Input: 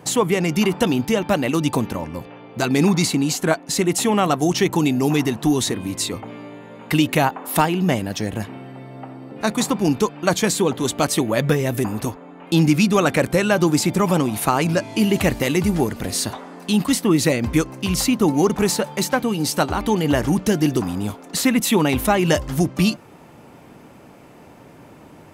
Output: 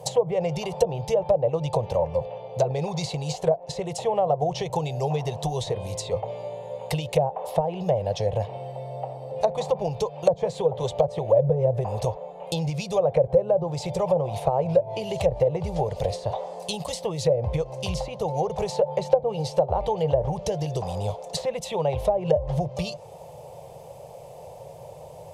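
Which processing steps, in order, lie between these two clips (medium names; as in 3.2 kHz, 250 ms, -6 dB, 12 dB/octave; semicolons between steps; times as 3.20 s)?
compression 16:1, threshold -19 dBFS, peak gain reduction 9.5 dB; FFT filter 150 Hz 0 dB, 270 Hz -29 dB, 520 Hz +10 dB, 900 Hz +1 dB, 1.4 kHz -19 dB, 3.4 kHz -3 dB, 6.9 kHz +1 dB, 11 kHz +3 dB; low-pass that closes with the level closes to 660 Hz, closed at -17 dBFS; trim +1.5 dB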